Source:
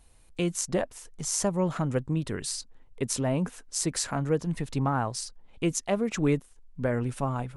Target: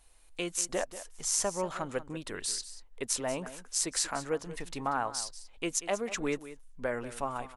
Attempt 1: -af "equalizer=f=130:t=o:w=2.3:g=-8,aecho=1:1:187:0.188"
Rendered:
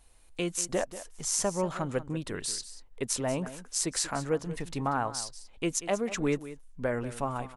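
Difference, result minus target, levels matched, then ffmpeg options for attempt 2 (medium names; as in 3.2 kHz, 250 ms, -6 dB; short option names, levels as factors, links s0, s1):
125 Hz band +7.5 dB
-af "equalizer=f=130:t=o:w=2.3:g=-18,aecho=1:1:187:0.188"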